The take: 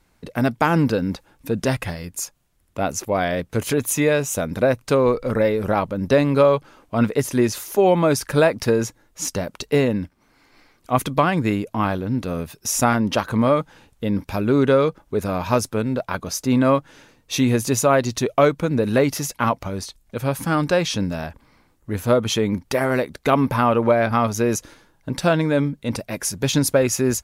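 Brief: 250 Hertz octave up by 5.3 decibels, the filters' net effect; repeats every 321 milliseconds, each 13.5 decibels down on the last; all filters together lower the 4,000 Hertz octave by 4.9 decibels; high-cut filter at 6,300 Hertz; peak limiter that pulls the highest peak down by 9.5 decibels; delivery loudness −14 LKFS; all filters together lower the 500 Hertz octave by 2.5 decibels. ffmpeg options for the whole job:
ffmpeg -i in.wav -af "lowpass=6300,equalizer=frequency=250:width_type=o:gain=7.5,equalizer=frequency=500:width_type=o:gain=-5,equalizer=frequency=4000:width_type=o:gain=-5.5,alimiter=limit=-12.5dB:level=0:latency=1,aecho=1:1:321|642:0.211|0.0444,volume=9dB" out.wav

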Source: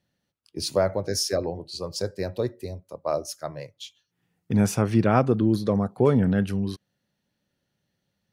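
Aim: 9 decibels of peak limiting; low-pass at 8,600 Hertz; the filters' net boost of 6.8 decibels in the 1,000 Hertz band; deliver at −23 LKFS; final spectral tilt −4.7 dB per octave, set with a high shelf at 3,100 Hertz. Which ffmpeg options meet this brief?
ffmpeg -i in.wav -af "lowpass=8600,equalizer=frequency=1000:width_type=o:gain=8.5,highshelf=frequency=3100:gain=8.5,volume=2dB,alimiter=limit=-9.5dB:level=0:latency=1" out.wav

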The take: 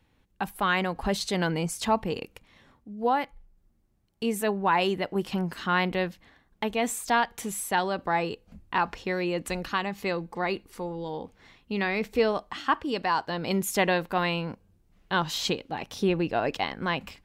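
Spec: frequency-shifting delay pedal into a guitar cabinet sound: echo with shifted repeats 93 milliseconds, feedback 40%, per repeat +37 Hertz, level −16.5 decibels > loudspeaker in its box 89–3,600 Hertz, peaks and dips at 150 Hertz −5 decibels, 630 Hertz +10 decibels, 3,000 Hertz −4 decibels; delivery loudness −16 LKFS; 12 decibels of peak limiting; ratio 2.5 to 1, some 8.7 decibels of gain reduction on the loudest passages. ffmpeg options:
ffmpeg -i in.wav -filter_complex "[0:a]acompressor=threshold=-32dB:ratio=2.5,alimiter=level_in=4.5dB:limit=-24dB:level=0:latency=1,volume=-4.5dB,asplit=4[link_01][link_02][link_03][link_04];[link_02]adelay=93,afreqshift=37,volume=-16.5dB[link_05];[link_03]adelay=186,afreqshift=74,volume=-24.5dB[link_06];[link_04]adelay=279,afreqshift=111,volume=-32.4dB[link_07];[link_01][link_05][link_06][link_07]amix=inputs=4:normalize=0,highpass=89,equalizer=frequency=150:width_type=q:width=4:gain=-5,equalizer=frequency=630:width_type=q:width=4:gain=10,equalizer=frequency=3000:width_type=q:width=4:gain=-4,lowpass=frequency=3600:width=0.5412,lowpass=frequency=3600:width=1.3066,volume=22.5dB" out.wav

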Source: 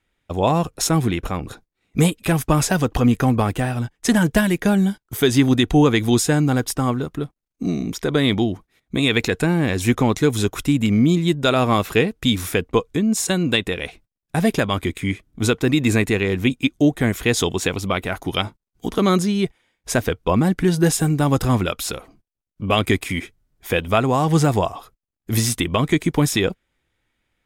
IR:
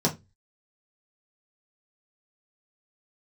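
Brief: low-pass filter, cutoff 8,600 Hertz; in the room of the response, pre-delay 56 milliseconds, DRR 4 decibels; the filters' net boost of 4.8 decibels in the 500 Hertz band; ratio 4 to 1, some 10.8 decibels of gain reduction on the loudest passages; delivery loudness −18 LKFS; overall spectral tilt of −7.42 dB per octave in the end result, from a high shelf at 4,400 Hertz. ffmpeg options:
-filter_complex "[0:a]lowpass=8600,equalizer=frequency=500:width_type=o:gain=6,highshelf=frequency=4400:gain=-4.5,acompressor=threshold=-21dB:ratio=4,asplit=2[link_01][link_02];[1:a]atrim=start_sample=2205,adelay=56[link_03];[link_02][link_03]afir=irnorm=-1:irlink=0,volume=-15.5dB[link_04];[link_01][link_04]amix=inputs=2:normalize=0,volume=2dB"

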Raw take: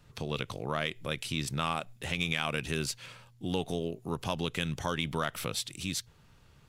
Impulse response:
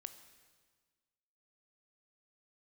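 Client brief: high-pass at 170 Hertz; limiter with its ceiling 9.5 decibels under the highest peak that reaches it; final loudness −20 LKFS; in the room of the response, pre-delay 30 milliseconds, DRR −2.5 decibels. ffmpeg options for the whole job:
-filter_complex "[0:a]highpass=170,alimiter=limit=-23.5dB:level=0:latency=1,asplit=2[link_01][link_02];[1:a]atrim=start_sample=2205,adelay=30[link_03];[link_02][link_03]afir=irnorm=-1:irlink=0,volume=7.5dB[link_04];[link_01][link_04]amix=inputs=2:normalize=0,volume=13.5dB"

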